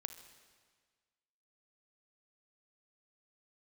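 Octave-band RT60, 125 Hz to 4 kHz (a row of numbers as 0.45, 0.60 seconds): 1.6, 1.6, 1.6, 1.6, 1.6, 1.5 seconds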